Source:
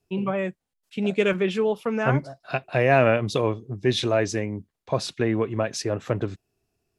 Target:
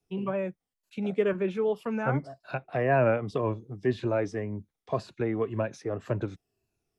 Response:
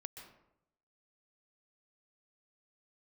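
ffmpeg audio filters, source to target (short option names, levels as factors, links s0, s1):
-filter_complex "[0:a]afftfilt=real='re*pow(10,7/40*sin(2*PI*(1.4*log(max(b,1)*sr/1024/100)/log(2)-(-1.9)*(pts-256)/sr)))':imag='im*pow(10,7/40*sin(2*PI*(1.4*log(max(b,1)*sr/1024/100)/log(2)-(-1.9)*(pts-256)/sr)))':win_size=1024:overlap=0.75,acrossover=split=110|480|1900[s0][s1][s2][s3];[s3]acompressor=threshold=0.00501:ratio=6[s4];[s0][s1][s2][s4]amix=inputs=4:normalize=0,volume=0.531"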